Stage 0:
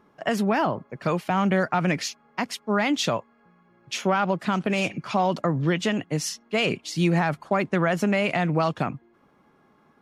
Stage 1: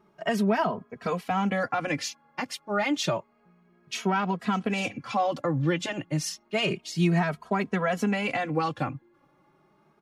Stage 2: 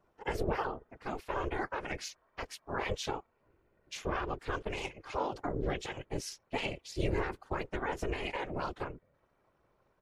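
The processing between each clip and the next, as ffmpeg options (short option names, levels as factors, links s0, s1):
-filter_complex "[0:a]asplit=2[s0][s1];[s1]adelay=2.8,afreqshift=0.3[s2];[s0][s2]amix=inputs=2:normalize=1"
-af "afftfilt=real='hypot(re,im)*cos(2*PI*random(0))':imag='hypot(re,im)*sin(2*PI*random(1))':win_size=512:overlap=0.75,aeval=exprs='val(0)*sin(2*PI*210*n/s)':c=same"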